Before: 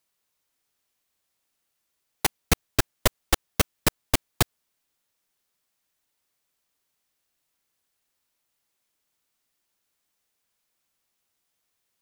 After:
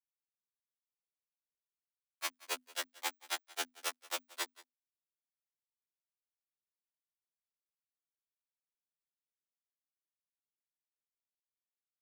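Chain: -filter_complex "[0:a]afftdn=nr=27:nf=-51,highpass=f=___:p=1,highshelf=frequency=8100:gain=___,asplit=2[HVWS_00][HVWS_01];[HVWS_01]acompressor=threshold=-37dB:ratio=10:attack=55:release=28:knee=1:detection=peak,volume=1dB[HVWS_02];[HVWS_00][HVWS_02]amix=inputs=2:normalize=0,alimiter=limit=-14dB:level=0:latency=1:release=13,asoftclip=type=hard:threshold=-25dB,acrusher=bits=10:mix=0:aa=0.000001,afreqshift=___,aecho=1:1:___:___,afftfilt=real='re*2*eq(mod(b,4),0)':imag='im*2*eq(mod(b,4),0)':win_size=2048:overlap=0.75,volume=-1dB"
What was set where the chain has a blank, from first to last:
870, -8.5, 250, 179, 0.0891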